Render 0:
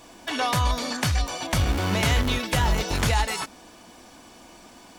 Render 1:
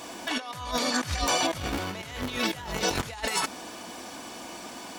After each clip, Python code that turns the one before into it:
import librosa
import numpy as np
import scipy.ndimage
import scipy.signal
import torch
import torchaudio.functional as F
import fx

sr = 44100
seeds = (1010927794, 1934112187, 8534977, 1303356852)

y = fx.highpass(x, sr, hz=210.0, slope=6)
y = fx.over_compress(y, sr, threshold_db=-32.0, ratio=-0.5)
y = y * 10.0 ** (3.0 / 20.0)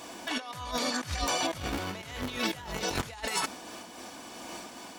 y = fx.am_noise(x, sr, seeds[0], hz=5.7, depth_pct=55)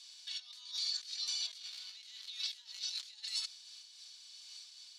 y = fx.ladder_bandpass(x, sr, hz=4600.0, resonance_pct=65)
y = y * 10.0 ** (3.5 / 20.0)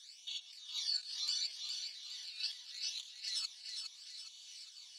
y = fx.phaser_stages(x, sr, stages=12, low_hz=350.0, high_hz=1700.0, hz=0.74, feedback_pct=30)
y = fx.echo_feedback(y, sr, ms=412, feedback_pct=47, wet_db=-6.0)
y = y * 10.0 ** (1.5 / 20.0)